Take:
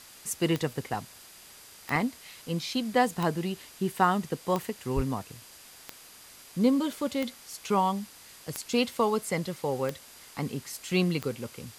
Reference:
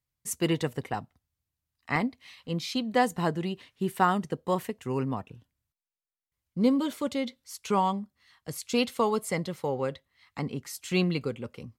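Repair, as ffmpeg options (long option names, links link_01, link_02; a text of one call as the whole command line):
ffmpeg -i in.wav -filter_complex "[0:a]adeclick=threshold=4,bandreject=frequency=4800:width=30,asplit=3[link_01][link_02][link_03];[link_01]afade=type=out:start_time=4.95:duration=0.02[link_04];[link_02]highpass=frequency=140:width=0.5412,highpass=frequency=140:width=1.3066,afade=type=in:start_time=4.95:duration=0.02,afade=type=out:start_time=5.07:duration=0.02[link_05];[link_03]afade=type=in:start_time=5.07:duration=0.02[link_06];[link_04][link_05][link_06]amix=inputs=3:normalize=0,afwtdn=0.0035" out.wav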